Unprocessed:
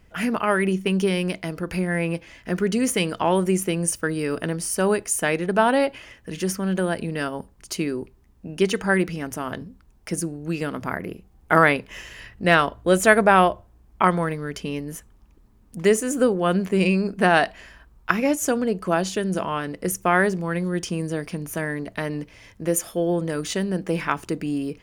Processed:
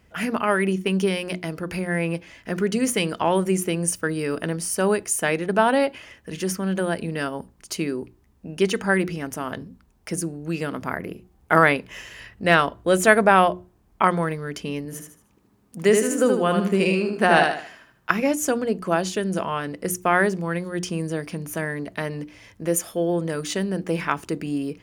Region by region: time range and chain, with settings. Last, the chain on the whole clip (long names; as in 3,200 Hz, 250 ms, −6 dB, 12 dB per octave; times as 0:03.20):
0:14.85–0:18.10: high-pass filter 110 Hz + repeating echo 76 ms, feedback 34%, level −4.5 dB
whole clip: high-pass filter 53 Hz; mains-hum notches 60/120/180/240/300/360 Hz